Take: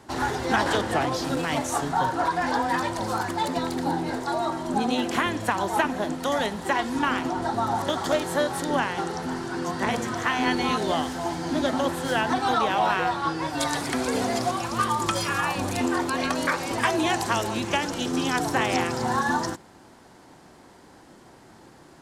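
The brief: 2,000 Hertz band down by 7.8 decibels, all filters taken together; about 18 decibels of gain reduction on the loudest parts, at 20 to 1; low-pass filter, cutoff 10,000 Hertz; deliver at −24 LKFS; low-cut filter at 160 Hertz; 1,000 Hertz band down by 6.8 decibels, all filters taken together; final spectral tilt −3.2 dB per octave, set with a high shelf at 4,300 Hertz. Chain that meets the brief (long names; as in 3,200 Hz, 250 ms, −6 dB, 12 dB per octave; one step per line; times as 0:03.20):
high-pass filter 160 Hz
low-pass filter 10,000 Hz
parametric band 1,000 Hz −7.5 dB
parametric band 2,000 Hz −9 dB
high-shelf EQ 4,300 Hz +8 dB
downward compressor 20 to 1, threshold −40 dBFS
level +20 dB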